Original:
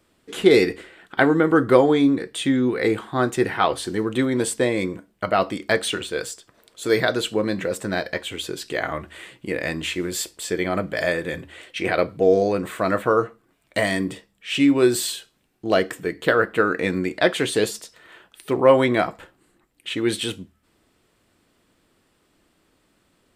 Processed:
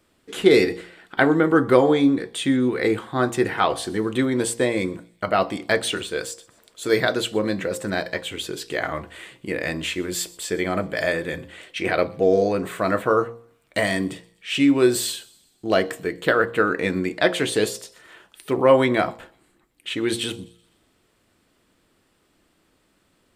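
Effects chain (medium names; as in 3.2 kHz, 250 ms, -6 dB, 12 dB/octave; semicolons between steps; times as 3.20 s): de-hum 58.27 Hz, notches 20; on a send: feedback echo behind a high-pass 125 ms, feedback 49%, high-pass 3.3 kHz, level -21.5 dB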